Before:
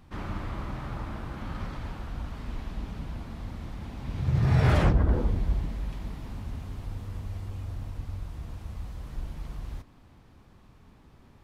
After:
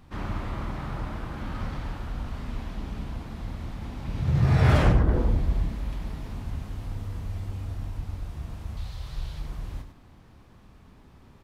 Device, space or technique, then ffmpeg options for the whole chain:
slapback doubling: -filter_complex "[0:a]asettb=1/sr,asplit=3[link_01][link_02][link_03];[link_01]atrim=end=8.774[link_04];[link_02]atrim=start=8.77:end=9.4,asetpts=PTS-STARTPTS,afade=type=in:duration=0.004:curve=qsin,afade=type=out:start_time=0.626:duration=0.004:curve=qsin,equalizer=frequency=125:width_type=o:width=1:gain=4,equalizer=frequency=250:width_type=o:width=1:gain=-12,equalizer=frequency=4000:width_type=o:width=1:gain=11[link_05];[link_03]atrim=start=9.396[link_06];[link_04][link_05]acrossfade=duration=0.004:curve1=hsin:curve2=qsin[link_07];[link_07][link_06]acrossfade=duration=0.004:curve1=qsin:curve2=hsin,asplit=3[link_08][link_09][link_10];[link_09]adelay=28,volume=-9dB[link_11];[link_10]adelay=101,volume=-9dB[link_12];[link_08][link_11][link_12]amix=inputs=3:normalize=0,volume=1.5dB"

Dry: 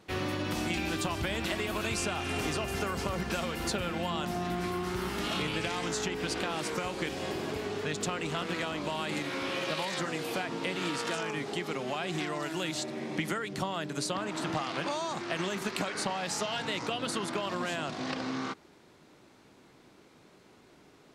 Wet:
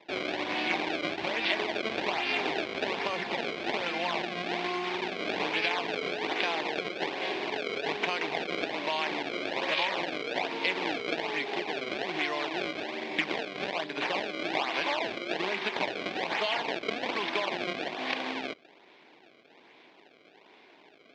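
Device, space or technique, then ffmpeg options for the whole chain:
circuit-bent sampling toy: -af "acrusher=samples=28:mix=1:aa=0.000001:lfo=1:lforange=44.8:lforate=1.2,highpass=460,equalizer=frequency=530:width_type=q:width=4:gain=-4,equalizer=frequency=1300:width_type=q:width=4:gain=-9,equalizer=frequency=2300:width_type=q:width=4:gain=6,equalizer=frequency=3500:width_type=q:width=4:gain=3,lowpass=frequency=4400:width=0.5412,lowpass=frequency=4400:width=1.3066,volume=6dB"

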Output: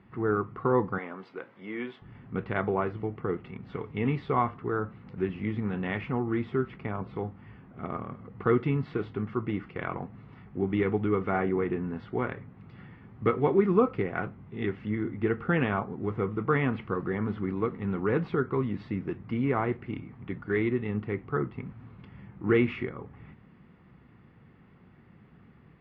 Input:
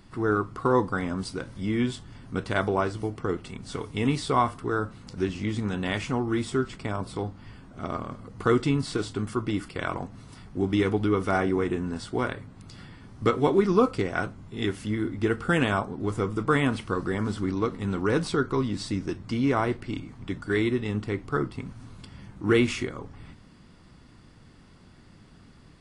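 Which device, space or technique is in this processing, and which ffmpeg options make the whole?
bass cabinet: -filter_complex "[0:a]highpass=79,equalizer=frequency=89:width_type=q:width=4:gain=-5,equalizer=frequency=290:width_type=q:width=4:gain=-6,equalizer=frequency=610:width_type=q:width=4:gain=-6,equalizer=frequency=1000:width_type=q:width=4:gain=-4,equalizer=frequency=1500:width_type=q:width=4:gain=-5,lowpass=frequency=2300:width=0.5412,lowpass=frequency=2300:width=1.3066,asettb=1/sr,asplit=3[link_01][link_02][link_03];[link_01]atrim=end=0.984[link_04];[link_02]atrim=start=0.98:end=2.02,asetpts=PTS-STARTPTS,afade=type=in:duration=0.004:curve=qsin,afade=type=out:start_time=1.036:duration=0.004:curve=qsin,highpass=420[link_05];[link_03]atrim=start=2.016[link_06];[link_04][link_05]acrossfade=duration=0.004:curve1=hsin:curve2=qsin[link_07];[link_07][link_06]acrossfade=duration=0.004:curve1=qsin:curve2=hsin"

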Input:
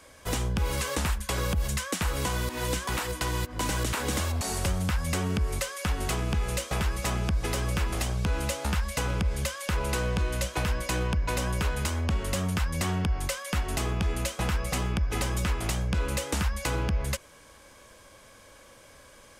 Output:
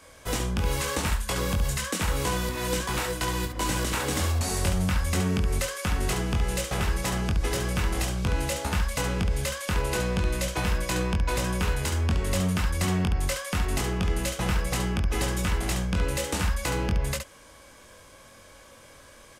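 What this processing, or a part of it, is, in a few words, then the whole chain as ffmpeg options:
slapback doubling: -filter_complex "[0:a]asplit=3[link_01][link_02][link_03];[link_02]adelay=22,volume=-4.5dB[link_04];[link_03]adelay=70,volume=-6.5dB[link_05];[link_01][link_04][link_05]amix=inputs=3:normalize=0"

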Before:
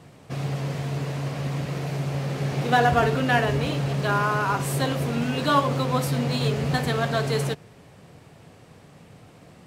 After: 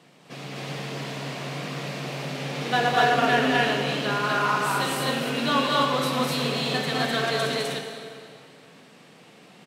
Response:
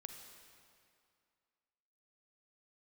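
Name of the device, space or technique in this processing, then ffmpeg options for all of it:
stadium PA: -filter_complex "[0:a]highpass=frequency=170:width=0.5412,highpass=frequency=170:width=1.3066,equalizer=frequency=3300:width_type=o:width=1.8:gain=7,aecho=1:1:207|253.6:0.631|1[link_01];[1:a]atrim=start_sample=2205[link_02];[link_01][link_02]afir=irnorm=-1:irlink=0"

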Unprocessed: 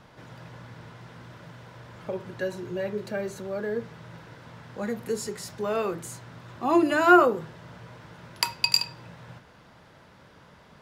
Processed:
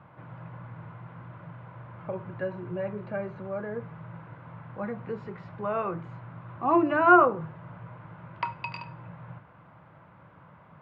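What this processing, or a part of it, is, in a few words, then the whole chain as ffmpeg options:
bass cabinet: -af "highpass=83,equalizer=frequency=110:width_type=q:width=4:gain=5,equalizer=frequency=160:width_type=q:width=4:gain=5,equalizer=frequency=230:width_type=q:width=4:gain=-6,equalizer=frequency=420:width_type=q:width=4:gain=-8,equalizer=frequency=1100:width_type=q:width=4:gain=4,equalizer=frequency=1800:width_type=q:width=4:gain=-6,lowpass=frequency=2200:width=0.5412,lowpass=frequency=2200:width=1.3066"

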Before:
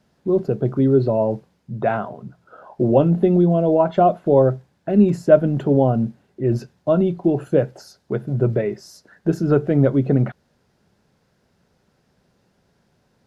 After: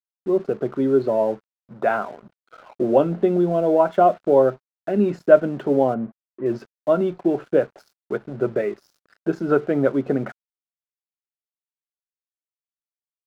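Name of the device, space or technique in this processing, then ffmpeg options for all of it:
pocket radio on a weak battery: -filter_complex "[0:a]highpass=280,lowpass=4100,aeval=exprs='sgn(val(0))*max(abs(val(0))-0.00422,0)':channel_layout=same,equalizer=frequency=1400:width_type=o:width=0.46:gain=5,asettb=1/sr,asplit=3[link_01][link_02][link_03];[link_01]atrim=end=5.944[link_04];[link_02]atrim=start=5.94:end=6.46,asetpts=PTS-STARTPTS,afade=type=in:duration=0.004:curve=qsin,afade=type=out:start_time=0.516:duration=0.004:curve=qsin,lowpass=1700[link_05];[link_03]atrim=start=6.456[link_06];[link_04][link_05]acrossfade=duration=0.004:curve1=hsin:curve2=qsin[link_07];[link_07][link_06]acrossfade=duration=0.004:curve1=qsin:curve2=hsin"

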